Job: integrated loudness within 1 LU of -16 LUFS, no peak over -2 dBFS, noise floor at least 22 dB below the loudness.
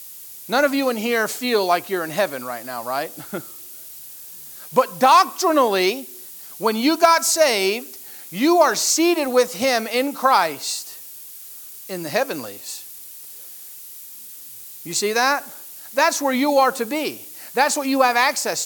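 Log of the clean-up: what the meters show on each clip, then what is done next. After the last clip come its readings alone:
noise floor -39 dBFS; noise floor target -42 dBFS; loudness -19.5 LUFS; peak -3.5 dBFS; loudness target -16.0 LUFS
-> denoiser 6 dB, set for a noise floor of -39 dBFS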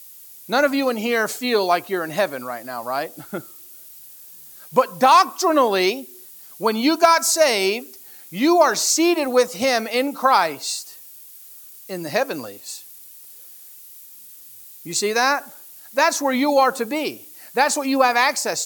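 noise floor -43 dBFS; loudness -19.5 LUFS; peak -3.5 dBFS; loudness target -16.0 LUFS
-> gain +3.5 dB; limiter -2 dBFS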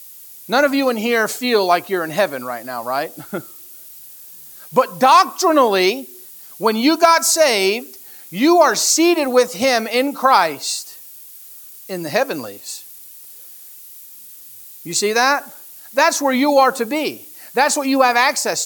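loudness -16.5 LUFS; peak -2.0 dBFS; noise floor -40 dBFS

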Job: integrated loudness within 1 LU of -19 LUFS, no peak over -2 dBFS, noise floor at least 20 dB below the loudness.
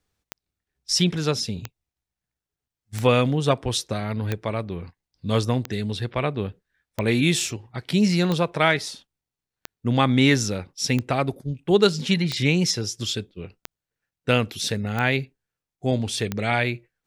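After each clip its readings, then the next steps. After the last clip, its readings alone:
clicks 13; loudness -23.5 LUFS; peak -5.5 dBFS; loudness target -19.0 LUFS
-> de-click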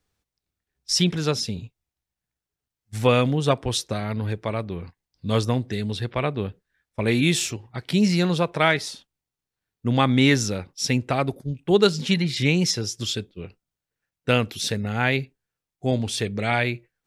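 clicks 0; loudness -23.5 LUFS; peak -5.5 dBFS; loudness target -19.0 LUFS
-> gain +4.5 dB; limiter -2 dBFS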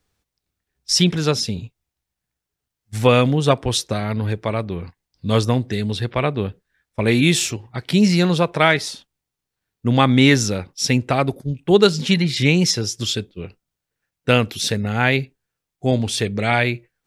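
loudness -19.0 LUFS; peak -2.0 dBFS; noise floor -83 dBFS

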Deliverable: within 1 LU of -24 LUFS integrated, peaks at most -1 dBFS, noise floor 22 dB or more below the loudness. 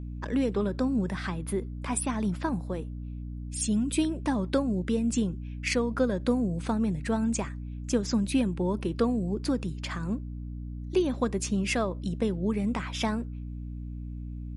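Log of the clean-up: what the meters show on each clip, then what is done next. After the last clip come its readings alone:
hum 60 Hz; harmonics up to 300 Hz; hum level -34 dBFS; loudness -30.0 LUFS; peak -13.0 dBFS; loudness target -24.0 LUFS
-> notches 60/120/180/240/300 Hz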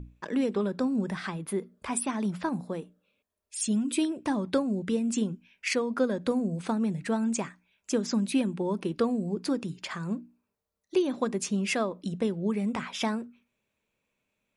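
hum none; loudness -30.0 LUFS; peak -14.5 dBFS; loudness target -24.0 LUFS
-> gain +6 dB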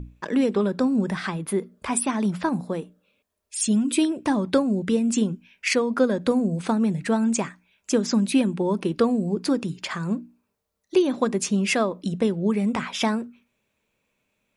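loudness -24.0 LUFS; peak -8.5 dBFS; noise floor -76 dBFS

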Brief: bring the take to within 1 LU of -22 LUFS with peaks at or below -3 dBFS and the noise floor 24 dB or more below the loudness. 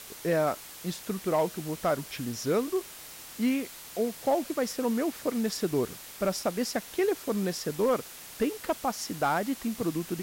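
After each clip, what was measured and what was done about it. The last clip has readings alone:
clipped 0.2%; flat tops at -18.5 dBFS; noise floor -46 dBFS; noise floor target -54 dBFS; loudness -30.0 LUFS; peak -18.5 dBFS; loudness target -22.0 LUFS
-> clip repair -18.5 dBFS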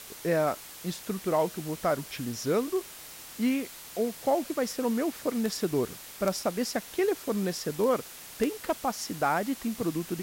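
clipped 0.0%; noise floor -46 dBFS; noise floor target -54 dBFS
-> noise print and reduce 8 dB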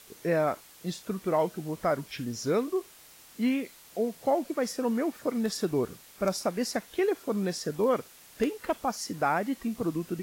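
noise floor -54 dBFS; noise floor target -55 dBFS
-> noise print and reduce 6 dB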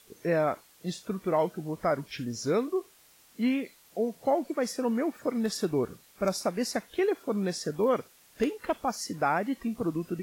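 noise floor -59 dBFS; loudness -30.5 LUFS; peak -12.0 dBFS; loudness target -22.0 LUFS
-> gain +8.5 dB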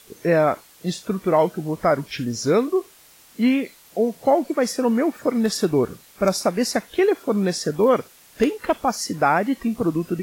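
loudness -22.0 LUFS; peak -3.5 dBFS; noise floor -51 dBFS

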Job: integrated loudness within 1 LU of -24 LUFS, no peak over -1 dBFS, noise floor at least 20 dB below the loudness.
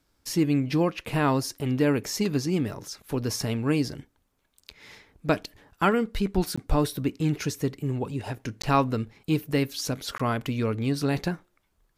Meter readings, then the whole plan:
dropouts 3; longest dropout 15 ms; loudness -27.0 LUFS; peak -8.5 dBFS; loudness target -24.0 LUFS
-> interpolate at 6.56/8.62/10.18, 15 ms; gain +3 dB

